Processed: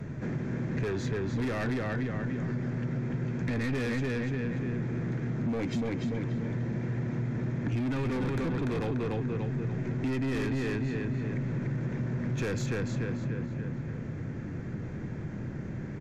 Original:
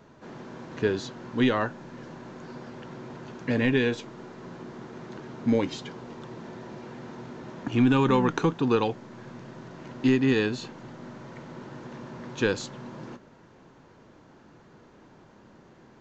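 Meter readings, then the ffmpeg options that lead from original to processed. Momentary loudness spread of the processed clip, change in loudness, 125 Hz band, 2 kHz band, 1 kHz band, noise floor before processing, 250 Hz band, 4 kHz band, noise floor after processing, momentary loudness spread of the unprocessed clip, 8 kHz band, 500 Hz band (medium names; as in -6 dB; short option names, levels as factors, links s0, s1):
7 LU, -6.0 dB, +5.0 dB, -4.0 dB, -8.5 dB, -54 dBFS, -3.0 dB, -8.5 dB, -38 dBFS, 20 LU, no reading, -5.5 dB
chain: -filter_complex "[0:a]asplit=2[s0][s1];[s1]adelay=292,lowpass=f=5000:p=1,volume=0.668,asplit=2[s2][s3];[s3]adelay=292,lowpass=f=5000:p=1,volume=0.41,asplit=2[s4][s5];[s5]adelay=292,lowpass=f=5000:p=1,volume=0.41,asplit=2[s6][s7];[s7]adelay=292,lowpass=f=5000:p=1,volume=0.41,asplit=2[s8][s9];[s9]adelay=292,lowpass=f=5000:p=1,volume=0.41[s10];[s0][s2][s4][s6][s8][s10]amix=inputs=6:normalize=0,volume=8.41,asoftclip=hard,volume=0.119,equalizer=f=125:t=o:w=1:g=8,equalizer=f=1000:t=o:w=1:g=-9,equalizer=f=2000:t=o:w=1:g=8,equalizer=f=4000:t=o:w=1:g=-8,acrossover=split=300|3000[s11][s12][s13];[s11]acompressor=threshold=0.0141:ratio=2[s14];[s14][s12][s13]amix=inputs=3:normalize=0,asoftclip=type=tanh:threshold=0.0335,aresample=32000,aresample=44100,lowshelf=f=230:g=11.5,bandreject=f=2900:w=11,acompressor=threshold=0.0126:ratio=3,volume=2.24"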